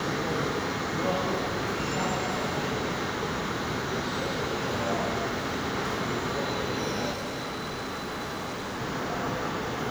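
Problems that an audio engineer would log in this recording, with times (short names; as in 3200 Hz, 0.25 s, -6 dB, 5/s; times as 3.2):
7.12–8.81 clipped -30.5 dBFS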